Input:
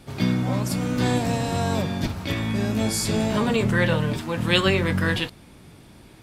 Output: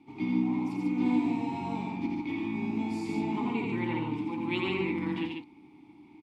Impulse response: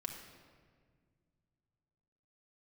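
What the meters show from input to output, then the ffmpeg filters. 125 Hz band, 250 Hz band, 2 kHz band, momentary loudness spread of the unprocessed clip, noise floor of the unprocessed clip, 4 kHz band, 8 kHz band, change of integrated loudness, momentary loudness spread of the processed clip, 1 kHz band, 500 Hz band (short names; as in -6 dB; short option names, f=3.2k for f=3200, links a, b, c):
-15.0 dB, -4.0 dB, -12.0 dB, 6 LU, -49 dBFS, -16.5 dB, under -25 dB, -8.0 dB, 6 LU, -7.0 dB, -11.5 dB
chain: -filter_complex "[0:a]asplit=3[a][b][c];[a]bandpass=f=300:t=q:w=8,volume=0dB[d];[b]bandpass=f=870:t=q:w=8,volume=-6dB[e];[c]bandpass=f=2.24k:t=q:w=8,volume=-9dB[f];[d][e][f]amix=inputs=3:normalize=0,aecho=1:1:85|145:0.668|0.668,volume=2.5dB"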